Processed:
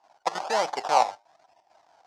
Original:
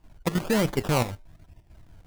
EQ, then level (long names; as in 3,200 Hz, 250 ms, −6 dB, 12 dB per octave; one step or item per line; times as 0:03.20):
high-pass with resonance 780 Hz, resonance Q 4.9
low-pass with resonance 5,400 Hz, resonance Q 2.1
parametric band 3,000 Hz −5 dB 2 octaves
0.0 dB